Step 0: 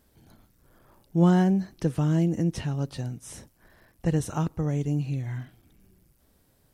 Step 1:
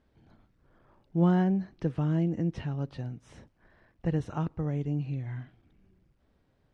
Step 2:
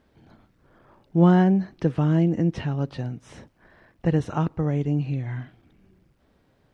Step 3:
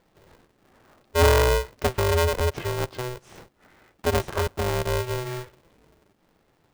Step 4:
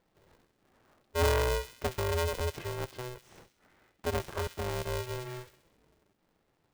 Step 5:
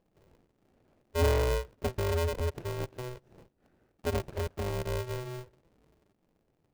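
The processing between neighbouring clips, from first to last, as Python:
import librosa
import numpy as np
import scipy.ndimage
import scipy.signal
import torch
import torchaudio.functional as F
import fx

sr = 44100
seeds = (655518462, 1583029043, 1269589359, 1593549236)

y1 = scipy.signal.sosfilt(scipy.signal.butter(2, 3000.0, 'lowpass', fs=sr, output='sos'), x)
y1 = y1 * librosa.db_to_amplitude(-4.0)
y2 = fx.low_shelf(y1, sr, hz=87.0, db=-8.0)
y2 = y2 * librosa.db_to_amplitude(8.5)
y3 = y2 * np.sign(np.sin(2.0 * np.pi * 250.0 * np.arange(len(y2)) / sr))
y3 = y3 * librosa.db_to_amplitude(-1.5)
y4 = fx.echo_wet_highpass(y3, sr, ms=66, feedback_pct=56, hz=2400.0, wet_db=-8.5)
y4 = y4 * librosa.db_to_amplitude(-9.0)
y5 = scipy.ndimage.median_filter(y4, 41, mode='constant')
y5 = y5 * librosa.db_to_amplitude(2.0)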